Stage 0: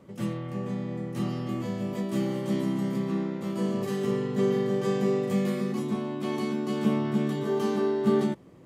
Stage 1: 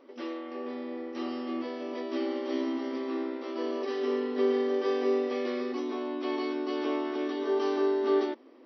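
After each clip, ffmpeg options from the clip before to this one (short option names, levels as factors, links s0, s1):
-af "afftfilt=real='re*between(b*sr/4096,230,5900)':imag='im*between(b*sr/4096,230,5900)':win_size=4096:overlap=0.75"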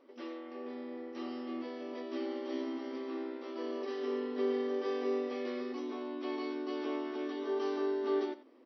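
-af "aecho=1:1:89:0.168,volume=0.473"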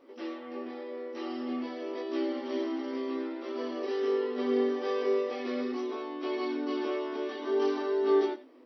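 -af "flanger=delay=18:depth=4.5:speed=0.49,volume=2.51"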